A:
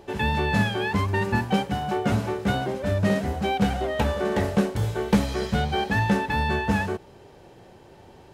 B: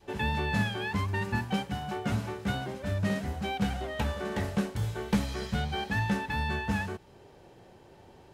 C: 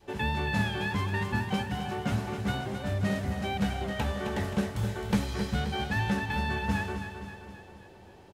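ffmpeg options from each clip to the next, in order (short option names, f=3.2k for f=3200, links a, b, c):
-af "adynamicequalizer=threshold=0.0126:dfrequency=480:dqfactor=0.75:tfrequency=480:tqfactor=0.75:attack=5:release=100:ratio=0.375:range=3:mode=cutabove:tftype=bell,volume=-5dB"
-af "aecho=1:1:264|528|792|1056|1320|1584|1848:0.376|0.207|0.114|0.0625|0.0344|0.0189|0.0104"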